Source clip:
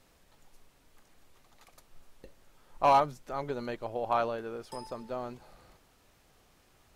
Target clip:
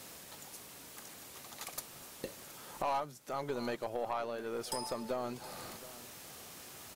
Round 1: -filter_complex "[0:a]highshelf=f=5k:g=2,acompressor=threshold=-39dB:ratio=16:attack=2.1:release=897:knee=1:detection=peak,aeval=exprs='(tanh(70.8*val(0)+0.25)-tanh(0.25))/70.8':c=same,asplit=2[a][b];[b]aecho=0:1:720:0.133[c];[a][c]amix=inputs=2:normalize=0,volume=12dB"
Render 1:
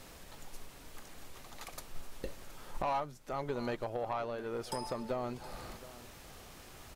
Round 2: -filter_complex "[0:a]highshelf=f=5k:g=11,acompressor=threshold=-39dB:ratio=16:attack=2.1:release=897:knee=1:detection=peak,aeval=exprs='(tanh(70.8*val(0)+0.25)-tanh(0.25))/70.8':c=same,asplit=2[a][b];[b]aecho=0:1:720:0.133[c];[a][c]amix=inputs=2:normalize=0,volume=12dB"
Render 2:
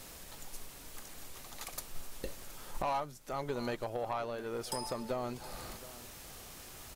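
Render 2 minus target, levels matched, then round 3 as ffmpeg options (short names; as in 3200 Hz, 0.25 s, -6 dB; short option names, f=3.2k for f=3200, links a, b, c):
125 Hz band +4.5 dB
-filter_complex "[0:a]highshelf=f=5k:g=11,acompressor=threshold=-39dB:ratio=16:attack=2.1:release=897:knee=1:detection=peak,highpass=120,aeval=exprs='(tanh(70.8*val(0)+0.25)-tanh(0.25))/70.8':c=same,asplit=2[a][b];[b]aecho=0:1:720:0.133[c];[a][c]amix=inputs=2:normalize=0,volume=12dB"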